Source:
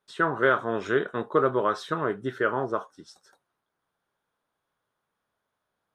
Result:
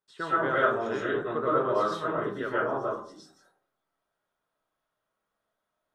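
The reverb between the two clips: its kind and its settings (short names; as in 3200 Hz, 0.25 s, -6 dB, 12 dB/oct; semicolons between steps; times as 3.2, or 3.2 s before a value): digital reverb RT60 0.54 s, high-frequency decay 0.4×, pre-delay 80 ms, DRR -8.5 dB; gain -10.5 dB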